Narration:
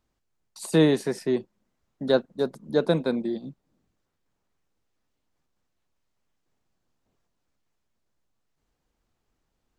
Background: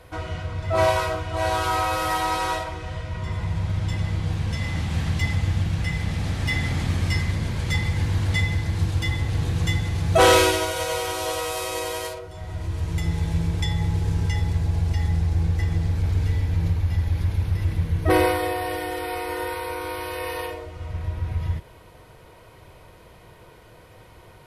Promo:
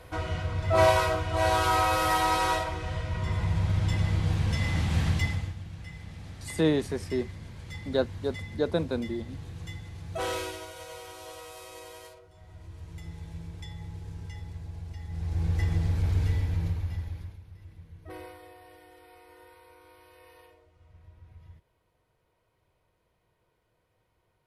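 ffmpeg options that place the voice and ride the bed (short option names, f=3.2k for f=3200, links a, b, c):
-filter_complex "[0:a]adelay=5850,volume=-5dB[a];[1:a]volume=12.5dB,afade=t=out:st=5.07:d=0.48:silence=0.158489,afade=t=in:st=15.08:d=0.51:silence=0.211349,afade=t=out:st=16.27:d=1.13:silence=0.0841395[b];[a][b]amix=inputs=2:normalize=0"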